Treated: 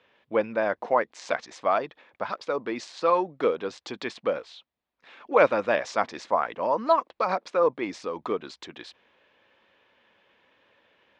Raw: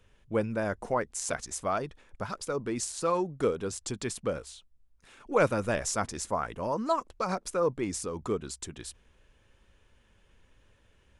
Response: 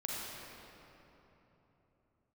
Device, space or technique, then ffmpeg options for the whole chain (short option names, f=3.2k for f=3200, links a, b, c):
phone earpiece: -af "highpass=390,equalizer=f=400:t=q:w=4:g=-5,equalizer=f=1.4k:t=q:w=4:g=-4,equalizer=f=2.9k:t=q:w=4:g=-3,lowpass=f=3.9k:w=0.5412,lowpass=f=3.9k:w=1.3066,volume=8dB"